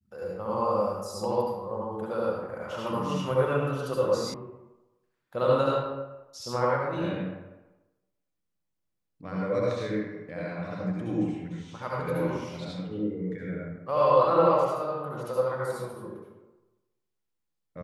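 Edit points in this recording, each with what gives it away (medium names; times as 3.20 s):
4.34 s: sound stops dead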